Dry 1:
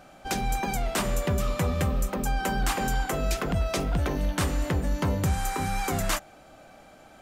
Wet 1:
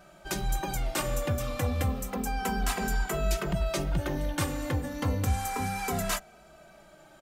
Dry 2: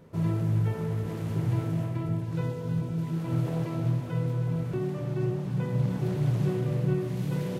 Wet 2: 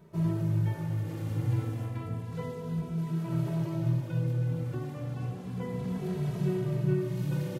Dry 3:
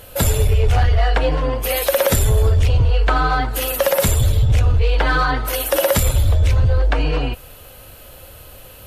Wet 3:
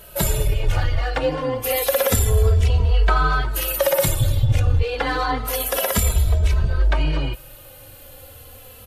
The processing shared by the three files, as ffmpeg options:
-filter_complex "[0:a]highshelf=frequency=11000:gain=4,asplit=2[link_01][link_02];[link_02]adelay=2.7,afreqshift=-0.3[link_03];[link_01][link_03]amix=inputs=2:normalize=1"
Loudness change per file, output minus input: −3.0, −2.5, −3.0 LU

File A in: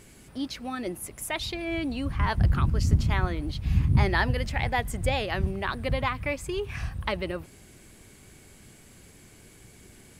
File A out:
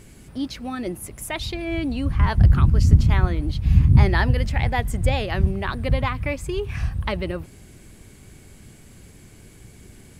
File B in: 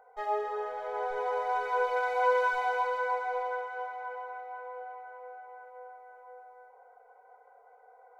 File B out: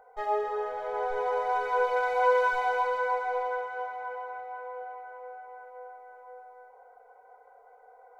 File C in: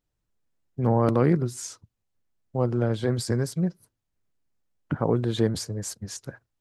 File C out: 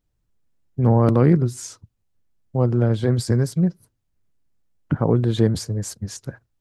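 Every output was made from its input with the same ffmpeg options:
-af "lowshelf=frequency=250:gain=7.5,volume=1.5dB"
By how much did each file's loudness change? +6.5, +2.5, +5.5 LU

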